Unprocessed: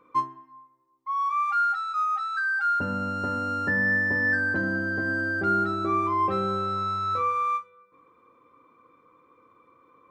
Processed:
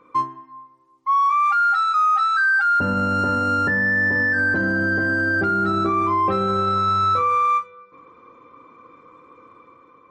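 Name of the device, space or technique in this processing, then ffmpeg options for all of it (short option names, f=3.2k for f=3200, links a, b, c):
low-bitrate web radio: -filter_complex "[0:a]asettb=1/sr,asplit=3[a][b][c];[a]atrim=end=5.494[d];[b]atrim=start=5.49:end=6.18,asetpts=PTS-STARTPTS,afade=t=in:d=0.004:c=qsin,afade=t=out:st=0.686:d=0.004:c=qsin,adynamicequalizer=threshold=0.00355:dfrequency=180:dqfactor=3.8:tfrequency=180:tqfactor=3.8:attack=5:release=100:ratio=0.375:range=2:mode=boostabove:tftype=bell[e];[c]atrim=start=6.176[f];[d][e]acrossfade=d=0.004:c1=hsin:c2=qsin[g];[g][f]acrossfade=d=0.004:c1=qsin:c2=hsin,dynaudnorm=f=170:g=7:m=5dB,alimiter=limit=-19.5dB:level=0:latency=1:release=14,volume=6.5dB" -ar 48000 -c:a libmp3lame -b:a 40k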